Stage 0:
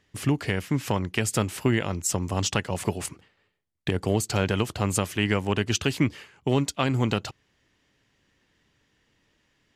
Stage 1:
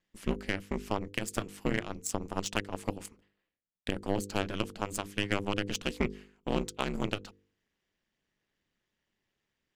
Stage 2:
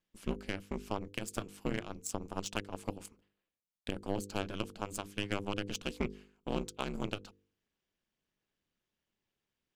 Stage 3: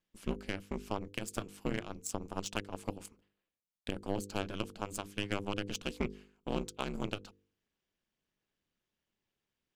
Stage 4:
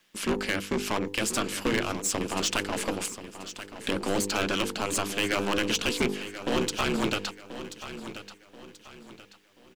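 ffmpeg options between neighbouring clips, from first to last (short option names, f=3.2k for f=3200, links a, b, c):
-af "aeval=exprs='val(0)*sin(2*PI*100*n/s)':c=same,aeval=exprs='0.355*(cos(1*acos(clip(val(0)/0.355,-1,1)))-cos(1*PI/2))+0.0316*(cos(7*acos(clip(val(0)/0.355,-1,1)))-cos(7*PI/2))':c=same,bandreject=f=50.08:t=h:w=4,bandreject=f=100.16:t=h:w=4,bandreject=f=150.24:t=h:w=4,bandreject=f=200.32:t=h:w=4,bandreject=f=250.4:t=h:w=4,bandreject=f=300.48:t=h:w=4,bandreject=f=350.56:t=h:w=4,bandreject=f=400.64:t=h:w=4,bandreject=f=450.72:t=h:w=4,bandreject=f=500.8:t=h:w=4,volume=-3dB"
-af "equalizer=f=1.9k:w=5.8:g=-7,volume=-4.5dB"
-af anull
-filter_complex "[0:a]asplit=2[a][b];[b]highpass=f=720:p=1,volume=28dB,asoftclip=type=tanh:threshold=-17.5dB[c];[a][c]amix=inputs=2:normalize=0,lowpass=f=6.5k:p=1,volume=-6dB,acrossover=split=470|1100[d][e][f];[e]aeval=exprs='max(val(0),0)':c=same[g];[d][g][f]amix=inputs=3:normalize=0,aecho=1:1:1033|2066|3099|4132:0.237|0.0854|0.0307|0.0111,volume=3dB"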